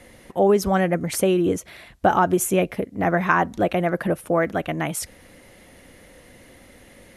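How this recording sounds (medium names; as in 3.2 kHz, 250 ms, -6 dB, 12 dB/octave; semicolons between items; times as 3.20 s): a quantiser's noise floor 12-bit, dither triangular; MP2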